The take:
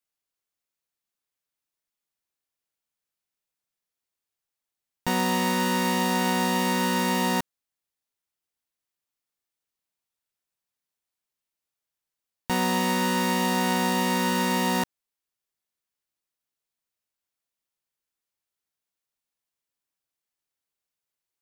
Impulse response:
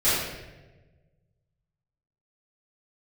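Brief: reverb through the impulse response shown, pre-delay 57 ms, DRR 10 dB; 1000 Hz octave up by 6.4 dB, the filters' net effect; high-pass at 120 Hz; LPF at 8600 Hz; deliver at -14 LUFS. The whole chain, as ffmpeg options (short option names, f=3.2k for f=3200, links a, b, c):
-filter_complex "[0:a]highpass=120,lowpass=8.6k,equalizer=f=1k:t=o:g=7,asplit=2[a][b];[1:a]atrim=start_sample=2205,adelay=57[c];[b][c]afir=irnorm=-1:irlink=0,volume=-26dB[d];[a][d]amix=inputs=2:normalize=0,volume=7dB"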